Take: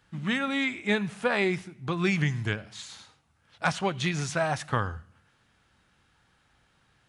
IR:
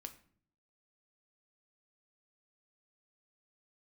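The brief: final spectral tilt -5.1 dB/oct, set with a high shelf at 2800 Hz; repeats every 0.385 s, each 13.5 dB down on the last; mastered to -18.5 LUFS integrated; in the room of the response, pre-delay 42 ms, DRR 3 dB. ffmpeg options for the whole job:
-filter_complex "[0:a]highshelf=f=2.8k:g=-7,aecho=1:1:385|770:0.211|0.0444,asplit=2[a][b];[1:a]atrim=start_sample=2205,adelay=42[c];[b][c]afir=irnorm=-1:irlink=0,volume=2dB[d];[a][d]amix=inputs=2:normalize=0,volume=9.5dB"

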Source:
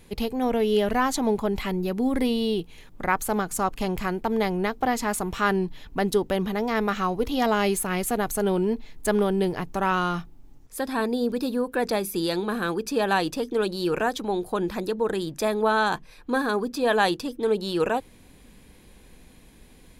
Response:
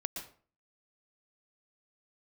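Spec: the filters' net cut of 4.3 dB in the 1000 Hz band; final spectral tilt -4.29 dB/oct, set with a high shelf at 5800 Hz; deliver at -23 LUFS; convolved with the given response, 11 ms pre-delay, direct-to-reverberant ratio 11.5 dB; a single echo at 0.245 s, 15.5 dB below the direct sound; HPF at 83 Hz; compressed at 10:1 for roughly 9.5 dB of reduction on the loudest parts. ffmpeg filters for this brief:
-filter_complex "[0:a]highpass=83,equalizer=f=1k:t=o:g=-6,highshelf=f=5.8k:g=4,acompressor=threshold=-28dB:ratio=10,aecho=1:1:245:0.168,asplit=2[a][b];[1:a]atrim=start_sample=2205,adelay=11[c];[b][c]afir=irnorm=-1:irlink=0,volume=-12dB[d];[a][d]amix=inputs=2:normalize=0,volume=9.5dB"

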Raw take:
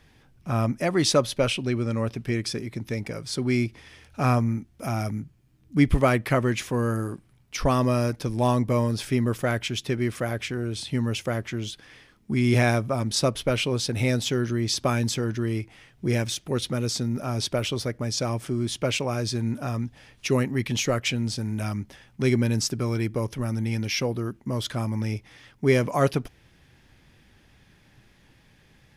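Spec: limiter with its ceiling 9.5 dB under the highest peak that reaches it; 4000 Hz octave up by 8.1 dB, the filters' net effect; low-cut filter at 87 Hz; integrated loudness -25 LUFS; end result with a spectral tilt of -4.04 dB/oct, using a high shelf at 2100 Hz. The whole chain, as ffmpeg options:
-af "highpass=87,highshelf=f=2.1k:g=5,equalizer=f=4k:t=o:g=5.5,volume=0.5dB,alimiter=limit=-12dB:level=0:latency=1"

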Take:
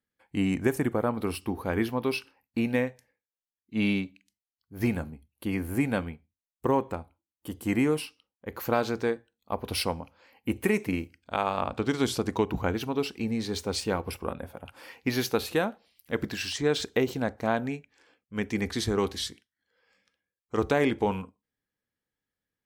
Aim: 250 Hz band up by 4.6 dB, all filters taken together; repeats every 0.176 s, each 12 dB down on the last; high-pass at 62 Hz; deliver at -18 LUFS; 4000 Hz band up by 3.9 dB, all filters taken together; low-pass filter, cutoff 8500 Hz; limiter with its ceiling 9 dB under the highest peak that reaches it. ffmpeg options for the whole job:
-af "highpass=62,lowpass=8.5k,equalizer=f=250:t=o:g=5.5,equalizer=f=4k:t=o:g=5,alimiter=limit=-17.5dB:level=0:latency=1,aecho=1:1:176|352|528:0.251|0.0628|0.0157,volume=11.5dB"

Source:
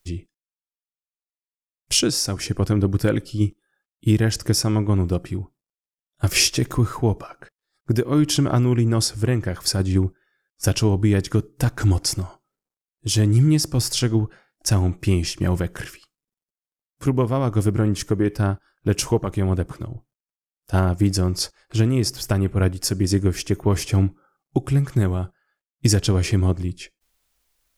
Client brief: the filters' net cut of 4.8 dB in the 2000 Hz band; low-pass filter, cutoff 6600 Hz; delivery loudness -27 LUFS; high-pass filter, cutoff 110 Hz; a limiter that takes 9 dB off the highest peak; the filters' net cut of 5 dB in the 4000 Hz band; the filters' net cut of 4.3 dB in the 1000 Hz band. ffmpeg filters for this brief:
-af "highpass=110,lowpass=6.6k,equalizer=f=1k:t=o:g=-4.5,equalizer=f=2k:t=o:g=-3.5,equalizer=f=4k:t=o:g=-5,volume=0.5dB,alimiter=limit=-15dB:level=0:latency=1"

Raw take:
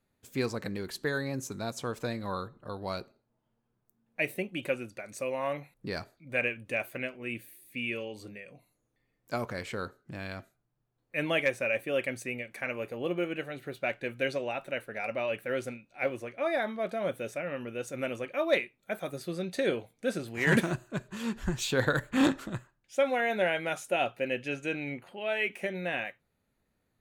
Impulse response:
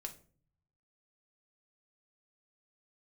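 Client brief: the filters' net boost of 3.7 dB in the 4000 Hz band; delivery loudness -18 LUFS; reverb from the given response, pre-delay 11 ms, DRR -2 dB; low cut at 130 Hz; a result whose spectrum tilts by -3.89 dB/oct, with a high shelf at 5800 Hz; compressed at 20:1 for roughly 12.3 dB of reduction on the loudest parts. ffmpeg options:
-filter_complex "[0:a]highpass=130,equalizer=f=4k:t=o:g=3.5,highshelf=f=5.8k:g=4,acompressor=threshold=-31dB:ratio=20,asplit=2[a][b];[1:a]atrim=start_sample=2205,adelay=11[c];[b][c]afir=irnorm=-1:irlink=0,volume=5dB[d];[a][d]amix=inputs=2:normalize=0,volume=15dB"

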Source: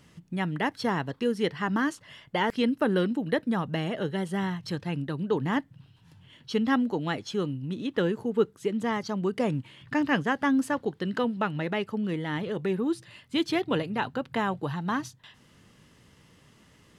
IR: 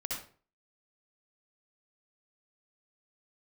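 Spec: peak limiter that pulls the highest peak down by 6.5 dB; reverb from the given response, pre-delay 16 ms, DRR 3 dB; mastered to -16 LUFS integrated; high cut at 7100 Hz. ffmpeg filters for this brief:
-filter_complex "[0:a]lowpass=7.1k,alimiter=limit=-19dB:level=0:latency=1,asplit=2[a][b];[1:a]atrim=start_sample=2205,adelay=16[c];[b][c]afir=irnorm=-1:irlink=0,volume=-5.5dB[d];[a][d]amix=inputs=2:normalize=0,volume=12.5dB"

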